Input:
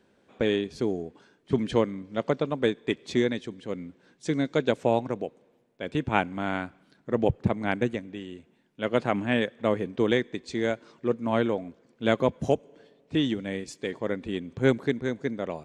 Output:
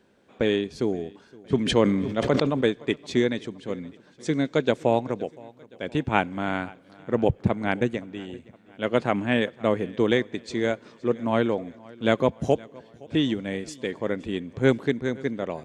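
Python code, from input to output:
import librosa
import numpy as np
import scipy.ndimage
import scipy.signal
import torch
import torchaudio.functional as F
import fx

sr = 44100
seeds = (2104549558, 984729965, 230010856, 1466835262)

y = fx.echo_feedback(x, sr, ms=518, feedback_pct=53, wet_db=-23)
y = fx.sustainer(y, sr, db_per_s=40.0, at=(1.65, 2.61), fade=0.02)
y = F.gain(torch.from_numpy(y), 2.0).numpy()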